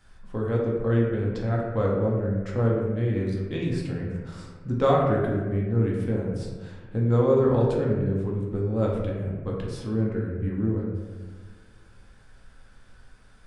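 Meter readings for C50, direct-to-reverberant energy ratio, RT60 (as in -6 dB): 1.5 dB, -3.0 dB, 1.5 s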